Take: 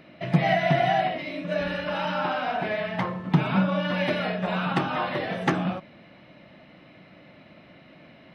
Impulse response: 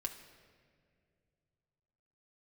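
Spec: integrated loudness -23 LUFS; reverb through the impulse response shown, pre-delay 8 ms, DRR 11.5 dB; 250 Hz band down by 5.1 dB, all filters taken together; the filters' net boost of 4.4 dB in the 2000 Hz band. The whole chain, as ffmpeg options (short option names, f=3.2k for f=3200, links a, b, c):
-filter_complex "[0:a]equalizer=f=250:t=o:g=-9,equalizer=f=2k:t=o:g=5.5,asplit=2[a][b];[1:a]atrim=start_sample=2205,adelay=8[c];[b][c]afir=irnorm=-1:irlink=0,volume=-10.5dB[d];[a][d]amix=inputs=2:normalize=0,volume=2.5dB"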